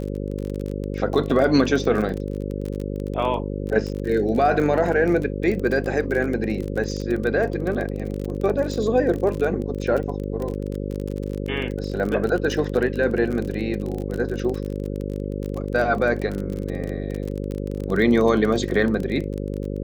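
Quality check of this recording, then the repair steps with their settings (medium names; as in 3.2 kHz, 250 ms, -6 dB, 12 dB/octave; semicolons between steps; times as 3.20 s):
buzz 50 Hz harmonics 11 -28 dBFS
crackle 32 per s -26 dBFS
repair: de-click; de-hum 50 Hz, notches 11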